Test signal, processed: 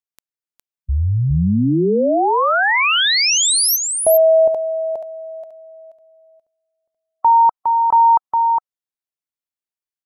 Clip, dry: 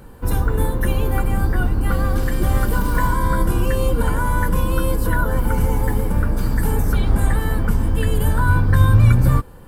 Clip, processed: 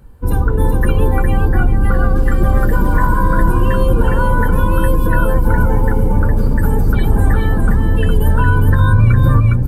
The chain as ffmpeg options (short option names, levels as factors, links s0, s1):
-filter_complex "[0:a]afftdn=nr=13:nf=-29,asplit=2[s0][s1];[s1]aecho=0:1:410:0.596[s2];[s0][s2]amix=inputs=2:normalize=0,alimiter=level_in=2:limit=0.891:release=50:level=0:latency=1,volume=0.841"